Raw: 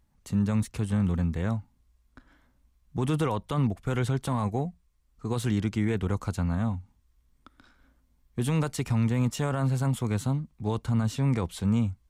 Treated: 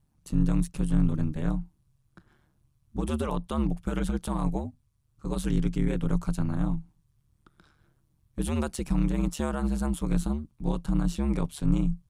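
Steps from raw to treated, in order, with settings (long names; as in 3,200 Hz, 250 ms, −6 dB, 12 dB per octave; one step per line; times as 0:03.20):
thirty-one-band graphic EQ 100 Hz +10 dB, 2,000 Hz −5 dB, 10,000 Hz +6 dB
ring modulation 73 Hz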